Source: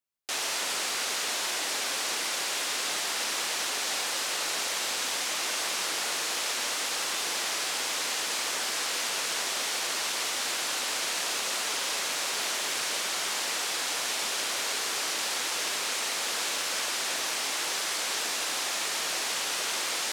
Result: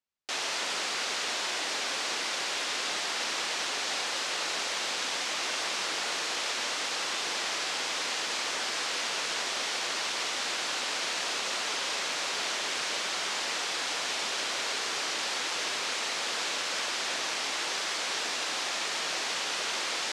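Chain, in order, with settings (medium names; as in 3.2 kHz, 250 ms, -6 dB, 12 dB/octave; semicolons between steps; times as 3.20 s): low-pass 6.1 kHz 12 dB/octave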